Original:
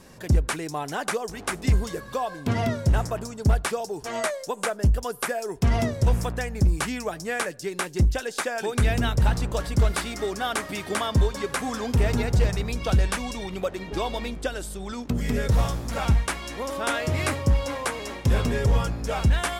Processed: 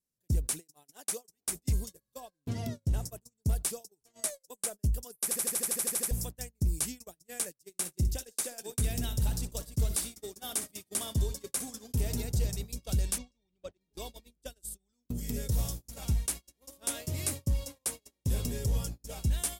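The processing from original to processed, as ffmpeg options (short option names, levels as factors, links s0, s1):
-filter_complex "[0:a]asettb=1/sr,asplit=3[s0][s1][s2];[s0]atrim=end=0.604[s3];[s1]atrim=start=0.6:end=1.46,asetpts=PTS-STARTPTS,afade=t=in:d=0.004:c=qsin,afade=t=out:st=0.856:d=0.004:c=qsin,highpass=f=250:p=1[s4];[s2]atrim=start=1.456[s5];[s3][s4]acrossfade=d=0.004:c1=hsin:c2=qsin[s6];[s6][s5]acrossfade=d=0.004:c1=qsin:c2=hsin,asettb=1/sr,asplit=3[s7][s8][s9];[s7]atrim=end=2.204[s10];[s8]atrim=start=2.2:end=3.05,asetpts=PTS-STARTPTS,afade=t=in:d=0.004:c=qsin,afade=t=out:st=0.846:d=0.004:c=qsin,highshelf=f=6300:g=-8[s11];[s9]atrim=start=3.046[s12];[s10][s11]acrossfade=d=0.004:c1=hsin:c2=qsin[s13];[s13][s12]acrossfade=d=0.004:c1=qsin:c2=hsin,asettb=1/sr,asplit=3[s14][s15][s16];[s14]atrim=end=7.554[s17];[s15]atrim=start=7.55:end=12.24,asetpts=PTS-STARTPTS,afade=t=in:d=0.004:c=qsin,afade=t=out:st=4.686:d=0.004:c=qsin,aecho=1:1:61|129:0.266|0.1,atrim=end_sample=206829[s18];[s16]atrim=start=12.236[s19];[s17][s18]acrossfade=d=0.004:c1=hsin:c2=qsin[s20];[s20][s19]acrossfade=d=0.004:c1=qsin:c2=hsin,asettb=1/sr,asplit=3[s21][s22][s23];[s21]atrim=end=13.184[s24];[s22]atrim=start=13.18:end=13.81,asetpts=PTS-STARTPTS,afade=t=in:d=0.004:c=qsin,afade=t=out:st=0.626:d=0.004:c=qsin,lowpass=4100[s25];[s23]atrim=start=13.806[s26];[s24][s25]acrossfade=d=0.004:c1=hsin:c2=qsin[s27];[s27][s26]acrossfade=d=0.004:c1=qsin:c2=hsin,asplit=12[s28][s29][s30][s31][s32][s33][s34][s35][s36][s37][s38][s39];[s28]atrim=end=5.312[s40];[s29]atrim=start=5.228:end=5.312[s41];[s30]atrim=start=5.228:end=5.312[s42];[s31]atrim=start=5.228:end=5.312[s43];[s32]atrim=start=5.228:end=5.312[s44];[s33]atrim=start=5.228:end=5.312[s45];[s34]atrim=start=5.228:end=5.312[s46];[s35]atrim=start=5.228:end=5.312[s47];[s36]atrim=start=5.228:end=5.312[s48];[s37]atrim=start=5.228:end=5.312[s49];[s38]atrim=start=5.228:end=5.312[s50];[s39]atrim=start=6.108[s51];[s40][s41]acrossfade=d=0.004:c1=hsin:c2=hsin[s52];[s52][s42]acrossfade=d=0.004:c1=hsin:c2=hsin[s53];[s53][s43]acrossfade=d=0.004:c1=hsin:c2=hsin[s54];[s54][s44]acrossfade=d=0.004:c1=hsin:c2=hsin[s55];[s55][s45]acrossfade=d=0.004:c1=hsin:c2=hsin[s56];[s56][s46]acrossfade=d=0.004:c1=hsin:c2=hsin[s57];[s57][s47]acrossfade=d=0.004:c1=hsin:c2=hsin[s58];[s58][s48]acrossfade=d=0.004:c1=hsin:c2=hsin[s59];[s59][s49]acrossfade=d=0.004:c1=hsin:c2=hsin[s60];[s60][s50]acrossfade=d=0.004:c1=hsin:c2=hsin[s61];[s61][s51]acrossfade=d=0.004:c1=hsin:c2=hsin,aemphasis=mode=production:type=75kf,agate=range=0.0178:threshold=0.0562:ratio=16:detection=peak,equalizer=f=1400:t=o:w=2.4:g=-14,volume=0.376"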